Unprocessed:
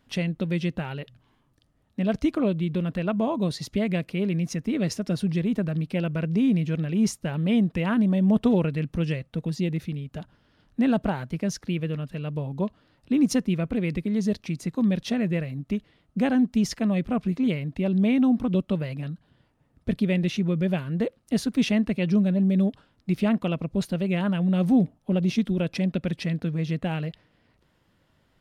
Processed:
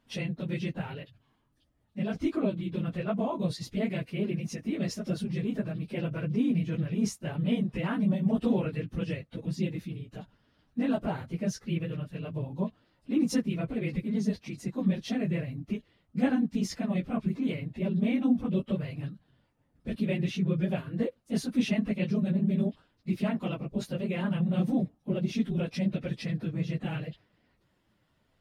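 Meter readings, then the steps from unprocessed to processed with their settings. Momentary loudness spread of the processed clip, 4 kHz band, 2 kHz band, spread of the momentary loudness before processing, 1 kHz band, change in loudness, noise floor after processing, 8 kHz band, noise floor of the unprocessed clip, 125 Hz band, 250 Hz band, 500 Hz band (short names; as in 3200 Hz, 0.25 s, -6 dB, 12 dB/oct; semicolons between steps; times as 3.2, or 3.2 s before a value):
9 LU, -5.5 dB, -5.5 dB, 10 LU, -5.5 dB, -5.5 dB, -72 dBFS, -5.5 dB, -67 dBFS, -5.0 dB, -5.5 dB, -5.5 dB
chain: phase scrambler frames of 50 ms; gain -5.5 dB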